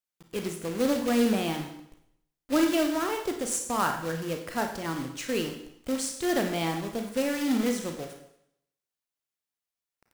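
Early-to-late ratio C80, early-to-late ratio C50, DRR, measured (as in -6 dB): 10.0 dB, 6.5 dB, 4.0 dB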